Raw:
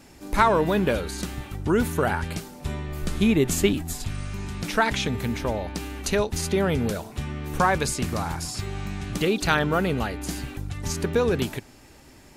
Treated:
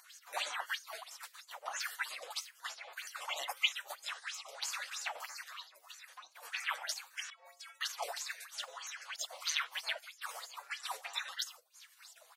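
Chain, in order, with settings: random spectral dropouts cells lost 33%; vibrato 0.99 Hz 13 cents; flange 1.4 Hz, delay 9.4 ms, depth 5.2 ms, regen +76%; comb 7.1 ms, depth 86%; 5.78–6.43 compressor 8:1, threshold -41 dBFS, peak gain reduction 18.5 dB; spectral gate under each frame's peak -25 dB weak; 7.3–7.81 metallic resonator 81 Hz, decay 0.73 s, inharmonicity 0.03; LFO high-pass sine 1.7 Hz 640–1700 Hz; upward compressor, threshold -52 dBFS; LFO bell 3.1 Hz 440–6900 Hz +18 dB; gain -3.5 dB

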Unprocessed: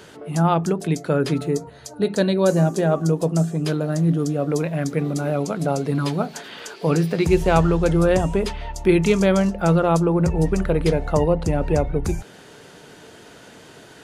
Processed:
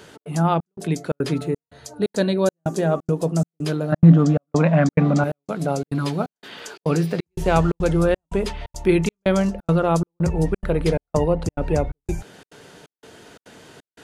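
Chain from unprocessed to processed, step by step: 3.92–5.24 EQ curve 100 Hz 0 dB, 200 Hz +14 dB, 400 Hz 0 dB, 560 Hz +10 dB, 1100 Hz +12 dB, 7700 Hz -3 dB, 11000 Hz -22 dB; step gate "xx.xxxx..xx" 175 bpm -60 dB; gain -1 dB

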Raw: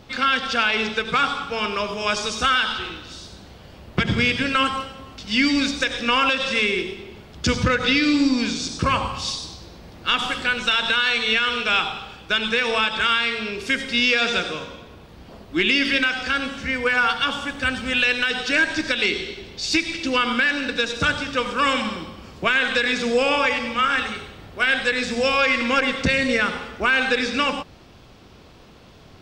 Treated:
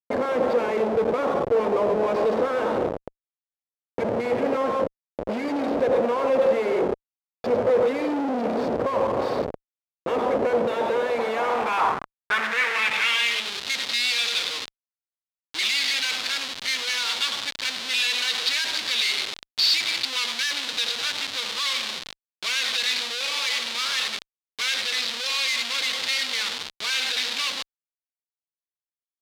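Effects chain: ripple EQ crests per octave 0.94, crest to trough 9 dB; Schmitt trigger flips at -27 dBFS; band-pass sweep 530 Hz -> 3900 Hz, 11.04–13.56; gain +7.5 dB

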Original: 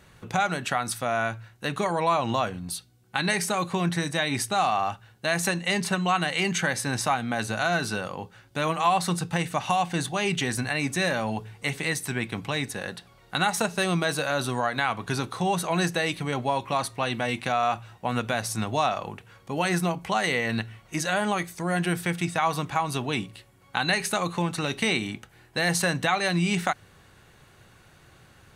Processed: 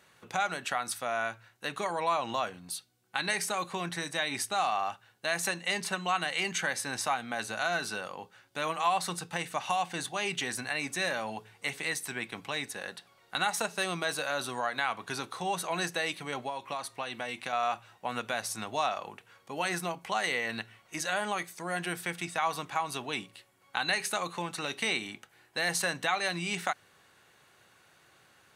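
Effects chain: HPF 520 Hz 6 dB/oct; 16.37–17.53 compressor, threshold -28 dBFS, peak gain reduction 6.5 dB; gain -4 dB

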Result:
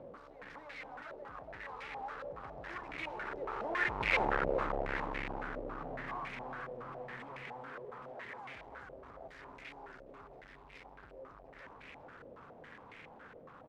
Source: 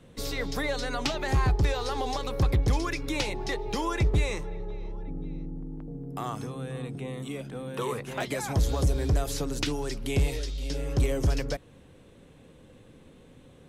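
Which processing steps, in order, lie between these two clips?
infinite clipping; Doppler pass-by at 4.33, 11 m/s, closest 1.8 m; tilt +2.5 dB/oct; in parallel at +1.5 dB: compressor, threshold -55 dBFS, peak gain reduction 27 dB; on the sum: wavefolder -22.5 dBFS; on a send: feedback echo 0.415 s, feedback 46%, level -5 dB; on the sum: stepped low-pass 7.2 Hz 560–2200 Hz; gain +1 dB

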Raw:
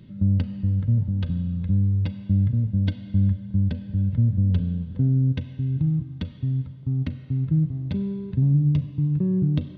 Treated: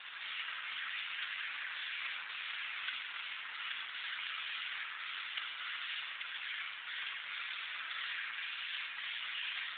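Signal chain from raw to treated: delta modulation 32 kbps, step -30 dBFS; HPF 1400 Hz 24 dB/oct; whisperiser; reverb RT60 1.3 s, pre-delay 15 ms, DRR -0.5 dB; gain +3.5 dB; AMR-NB 7.4 kbps 8000 Hz

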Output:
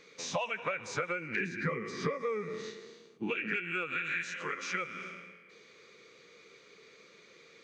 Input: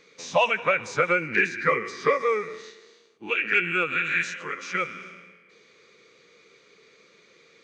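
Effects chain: 1.4–3.56 bell 170 Hz +14 dB 1.9 oct; compressor 5:1, threshold -31 dBFS, peak gain reduction 17 dB; gain -1 dB

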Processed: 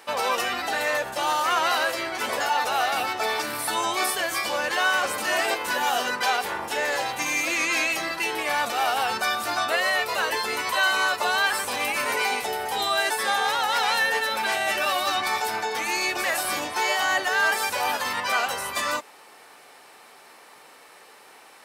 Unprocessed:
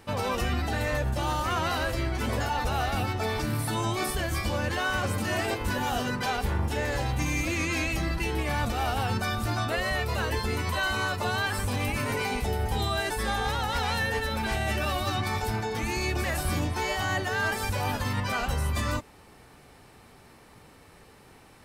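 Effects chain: HPF 580 Hz 12 dB/oct; gain +7 dB

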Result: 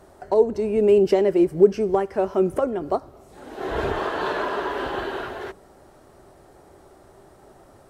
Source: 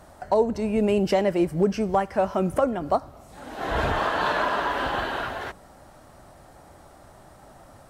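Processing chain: bell 390 Hz +13.5 dB 0.46 oct; gain -3.5 dB

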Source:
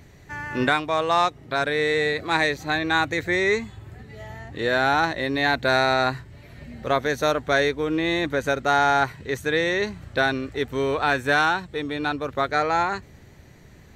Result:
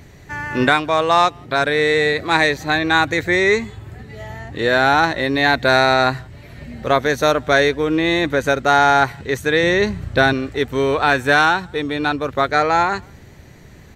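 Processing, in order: 9.63–10.33 low shelf 240 Hz +7.5 dB; speakerphone echo 0.17 s, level -29 dB; gain +6 dB

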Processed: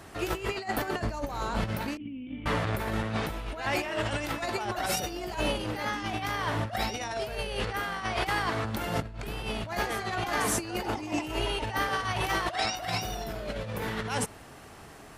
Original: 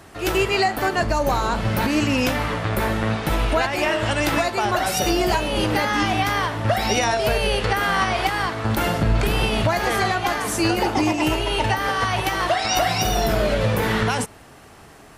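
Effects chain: negative-ratio compressor -24 dBFS, ratio -0.5; 1.97–2.46 vocal tract filter i; gain -6.5 dB

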